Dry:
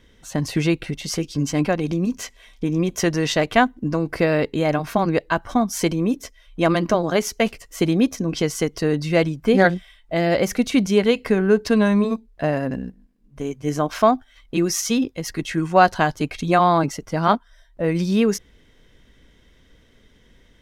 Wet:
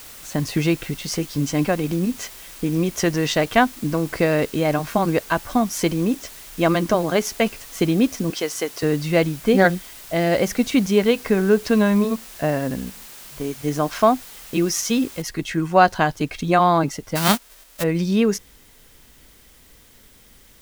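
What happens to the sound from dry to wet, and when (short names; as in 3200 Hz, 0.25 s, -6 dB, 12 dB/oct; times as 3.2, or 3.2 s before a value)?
6.17–6.82 steep low-pass 8900 Hz 48 dB/oct
8.3–8.83 HPF 410 Hz
10.91–13.47 high shelf 7700 Hz -4.5 dB
15.22 noise floor step -41 dB -53 dB
17.15–17.82 spectral whitening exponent 0.3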